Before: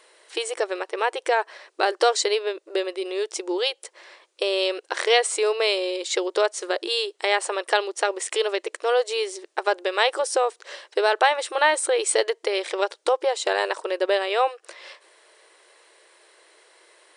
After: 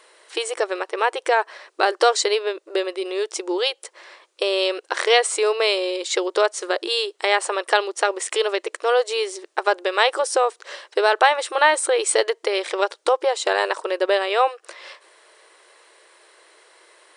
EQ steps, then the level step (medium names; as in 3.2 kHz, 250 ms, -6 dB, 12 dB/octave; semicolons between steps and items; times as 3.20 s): peaking EQ 1.2 kHz +3 dB 0.77 oct; +2.0 dB